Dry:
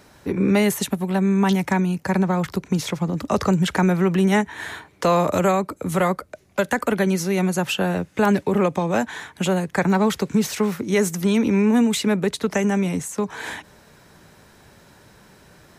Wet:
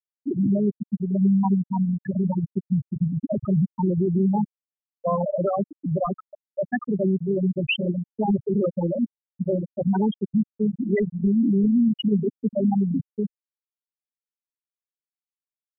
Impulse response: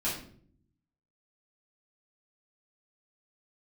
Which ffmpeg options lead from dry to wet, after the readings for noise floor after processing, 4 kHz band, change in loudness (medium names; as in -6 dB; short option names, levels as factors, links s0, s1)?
under -85 dBFS, -8.0 dB, -3.0 dB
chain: -af "highpass=f=100:w=0.5412,highpass=f=100:w=1.3066,equalizer=f=120:t=q:w=4:g=5,equalizer=f=180:t=q:w=4:g=-5,equalizer=f=450:t=q:w=4:g=-4,equalizer=f=2500:t=q:w=4:g=6,lowpass=f=9400:w=0.5412,lowpass=f=9400:w=1.3066,asoftclip=type=tanh:threshold=0.0631,aeval=exprs='val(0)+0.00891*(sin(2*PI*50*n/s)+sin(2*PI*2*50*n/s)/2+sin(2*PI*3*50*n/s)/3+sin(2*PI*4*50*n/s)/4+sin(2*PI*5*50*n/s)/5)':c=same,aecho=1:1:840:0.266,afftfilt=real='re*gte(hypot(re,im),0.251)':imag='im*gte(hypot(re,im),0.251)':win_size=1024:overlap=0.75,volume=2.51"